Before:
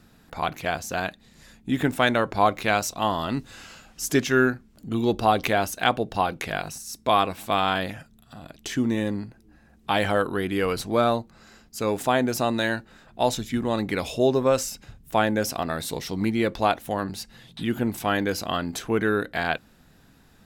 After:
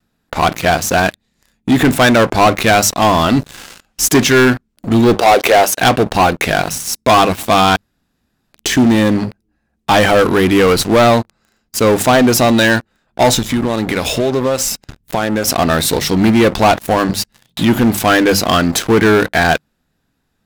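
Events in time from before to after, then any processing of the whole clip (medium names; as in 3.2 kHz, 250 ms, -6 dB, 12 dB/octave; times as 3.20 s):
5.14–5.78 s: resonant high-pass 480 Hz, resonance Q 1.7
7.76–8.53 s: room tone
13.39–15.48 s: compression 5:1, threshold -29 dBFS
whole clip: gate with hold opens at -47 dBFS; hum notches 50/100/150/200 Hz; waveshaping leveller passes 5; trim -1 dB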